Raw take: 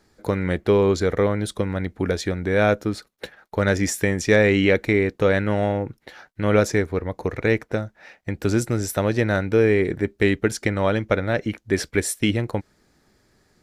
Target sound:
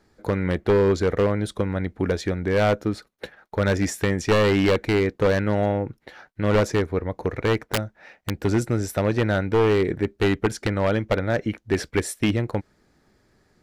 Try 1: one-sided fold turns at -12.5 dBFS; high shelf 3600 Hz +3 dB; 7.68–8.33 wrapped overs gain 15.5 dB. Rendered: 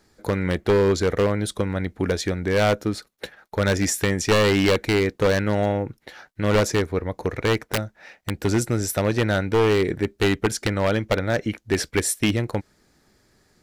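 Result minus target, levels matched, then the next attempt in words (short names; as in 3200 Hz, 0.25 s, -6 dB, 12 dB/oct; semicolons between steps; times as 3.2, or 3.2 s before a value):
8000 Hz band +7.0 dB
one-sided fold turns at -12.5 dBFS; high shelf 3600 Hz -6.5 dB; 7.68–8.33 wrapped overs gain 15.5 dB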